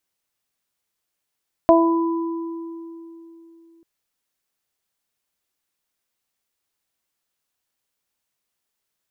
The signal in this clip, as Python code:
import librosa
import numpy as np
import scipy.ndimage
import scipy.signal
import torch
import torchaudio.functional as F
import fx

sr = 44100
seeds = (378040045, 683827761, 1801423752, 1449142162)

y = fx.additive(sr, length_s=2.14, hz=332.0, level_db=-13.0, upper_db=(5.5, -4), decay_s=3.39, upper_decays_s=(0.45, 2.04))